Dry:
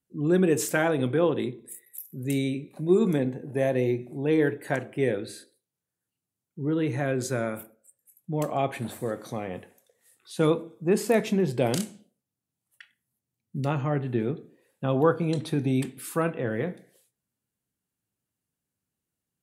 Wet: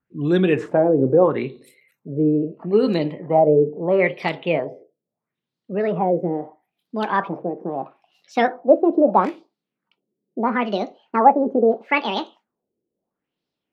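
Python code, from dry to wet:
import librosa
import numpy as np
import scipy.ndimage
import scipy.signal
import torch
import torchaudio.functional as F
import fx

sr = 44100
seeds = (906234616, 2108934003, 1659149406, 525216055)

y = fx.speed_glide(x, sr, from_pct=97, to_pct=186)
y = fx.filter_lfo_lowpass(y, sr, shape='sine', hz=0.76, low_hz=400.0, high_hz=4300.0, q=2.7)
y = y * librosa.db_to_amplitude(4.0)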